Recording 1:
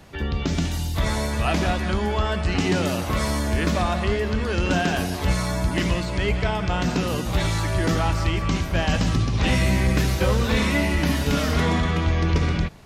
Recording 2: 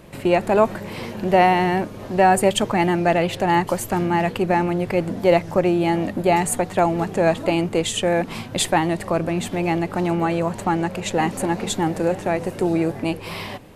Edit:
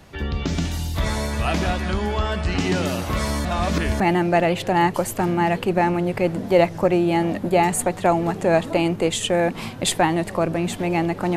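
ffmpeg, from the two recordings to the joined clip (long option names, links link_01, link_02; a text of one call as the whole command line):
ffmpeg -i cue0.wav -i cue1.wav -filter_complex "[0:a]apad=whole_dur=11.36,atrim=end=11.36,asplit=2[link_01][link_02];[link_01]atrim=end=3.452[link_03];[link_02]atrim=start=3.448:end=4.002,asetpts=PTS-STARTPTS,areverse[link_04];[1:a]atrim=start=2.728:end=10.09[link_05];[link_03][link_04]acrossfade=duration=0.004:curve1=hsin:curve2=hsin[link_06];[link_06][link_05]acrossfade=duration=0.004:curve1=hsin:curve2=hsin" out.wav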